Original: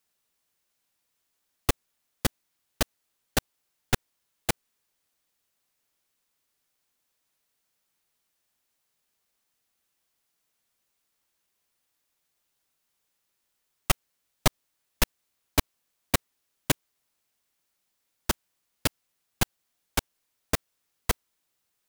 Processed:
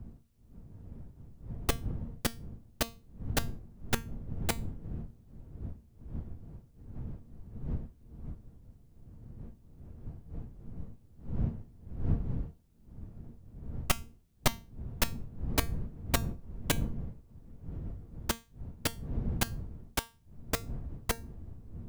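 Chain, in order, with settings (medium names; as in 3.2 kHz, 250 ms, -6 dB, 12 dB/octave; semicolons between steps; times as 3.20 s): wind noise 110 Hz -34 dBFS; feedback comb 230 Hz, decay 0.29 s, harmonics all, mix 60%; trim +1.5 dB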